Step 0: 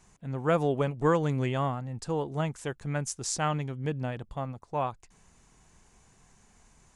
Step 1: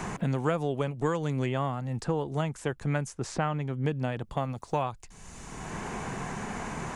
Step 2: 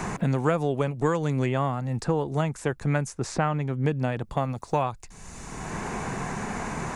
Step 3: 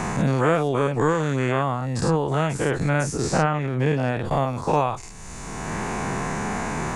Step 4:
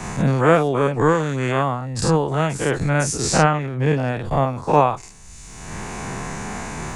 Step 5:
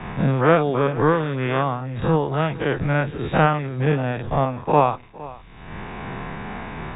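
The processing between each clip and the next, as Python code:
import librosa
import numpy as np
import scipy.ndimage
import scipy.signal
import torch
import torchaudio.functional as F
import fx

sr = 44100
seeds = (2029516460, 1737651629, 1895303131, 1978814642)

y1 = fx.band_squash(x, sr, depth_pct=100)
y2 = fx.peak_eq(y1, sr, hz=3100.0, db=-5.5, octaves=0.21)
y2 = F.gain(torch.from_numpy(y2), 4.0).numpy()
y3 = fx.spec_dilate(y2, sr, span_ms=120)
y4 = fx.band_widen(y3, sr, depth_pct=100)
y4 = F.gain(torch.from_numpy(y4), 3.0).numpy()
y5 = fx.law_mismatch(y4, sr, coded='A')
y5 = fx.brickwall_lowpass(y5, sr, high_hz=3800.0)
y5 = y5 + 10.0 ** (-19.0 / 20.0) * np.pad(y5, (int(462 * sr / 1000.0), 0))[:len(y5)]
y5 = F.gain(torch.from_numpy(y5), -1.0).numpy()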